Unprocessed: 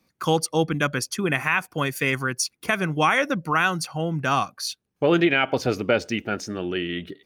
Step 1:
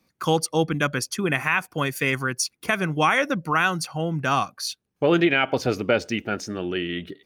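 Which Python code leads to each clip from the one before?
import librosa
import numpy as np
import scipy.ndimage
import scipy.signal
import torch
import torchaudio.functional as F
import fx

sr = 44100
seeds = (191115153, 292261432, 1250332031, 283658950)

y = x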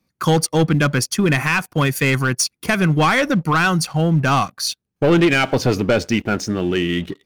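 y = fx.leveller(x, sr, passes=2)
y = fx.bass_treble(y, sr, bass_db=6, treble_db=1)
y = y * librosa.db_to_amplitude(-1.0)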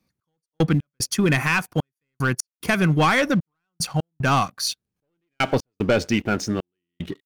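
y = fx.step_gate(x, sr, bpm=75, pattern='x..x.xxx', floor_db=-60.0, edge_ms=4.5)
y = y * librosa.db_to_amplitude(-2.5)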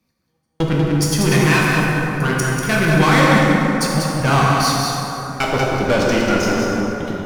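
y = fx.tube_stage(x, sr, drive_db=18.0, bias=0.55)
y = y + 10.0 ** (-5.5 / 20.0) * np.pad(y, (int(190 * sr / 1000.0), 0))[:len(y)]
y = fx.rev_plate(y, sr, seeds[0], rt60_s=3.8, hf_ratio=0.45, predelay_ms=0, drr_db=-4.0)
y = y * librosa.db_to_amplitude(4.0)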